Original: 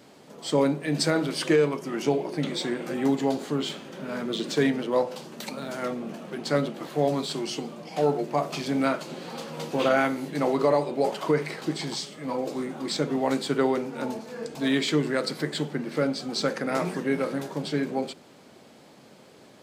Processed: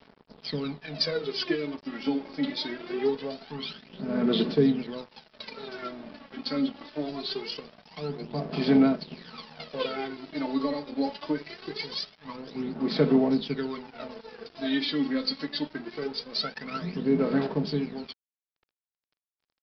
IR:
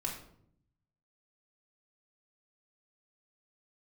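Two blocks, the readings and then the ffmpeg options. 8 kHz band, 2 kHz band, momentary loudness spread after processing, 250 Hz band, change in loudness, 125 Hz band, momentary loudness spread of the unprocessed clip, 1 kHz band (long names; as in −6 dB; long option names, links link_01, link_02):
below −15 dB, −6.0 dB, 17 LU, 0.0 dB, −2.0 dB, −3.5 dB, 11 LU, −8.0 dB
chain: -filter_complex "[0:a]aemphasis=mode=production:type=50kf,aecho=1:1:4.6:0.56,acrossover=split=430|3000[link_01][link_02][link_03];[link_02]acompressor=threshold=-33dB:ratio=3[link_04];[link_01][link_04][link_03]amix=inputs=3:normalize=0,aphaser=in_gain=1:out_gain=1:delay=3.7:decay=0.76:speed=0.23:type=sinusoidal,aresample=11025,aeval=exprs='sgn(val(0))*max(abs(val(0))-0.0126,0)':channel_layout=same,aresample=44100,volume=-6.5dB"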